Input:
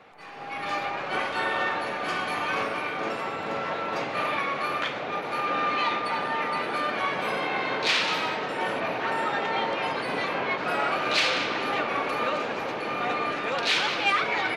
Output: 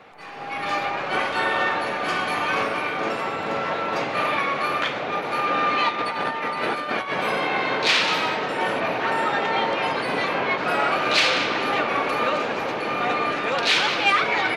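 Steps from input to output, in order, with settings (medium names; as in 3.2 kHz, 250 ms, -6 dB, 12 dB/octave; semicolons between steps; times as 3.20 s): 5.89–7.13 s: compressor with a negative ratio -30 dBFS, ratio -0.5; trim +4.5 dB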